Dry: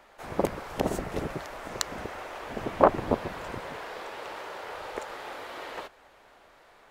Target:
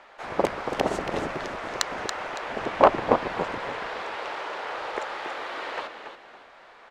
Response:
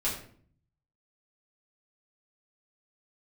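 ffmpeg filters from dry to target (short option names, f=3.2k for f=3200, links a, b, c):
-filter_complex "[0:a]asplit=5[a][b][c][d][e];[b]adelay=280,afreqshift=-67,volume=-8dB[f];[c]adelay=560,afreqshift=-134,volume=-18.2dB[g];[d]adelay=840,afreqshift=-201,volume=-28.3dB[h];[e]adelay=1120,afreqshift=-268,volume=-38.5dB[i];[a][f][g][h][i]amix=inputs=5:normalize=0,adynamicsmooth=sensitivity=4.5:basefreq=5.9k,asplit=2[j][k];[k]highpass=f=720:p=1,volume=12dB,asoftclip=type=tanh:threshold=-1dB[l];[j][l]amix=inputs=2:normalize=0,lowpass=f=7.7k:p=1,volume=-6dB"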